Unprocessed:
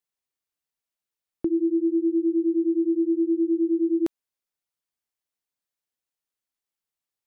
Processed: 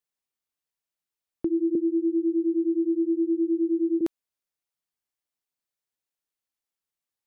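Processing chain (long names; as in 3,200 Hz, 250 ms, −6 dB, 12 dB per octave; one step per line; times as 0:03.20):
0:01.75–0:04.01: high-pass filter 220 Hz 24 dB per octave
level −1.5 dB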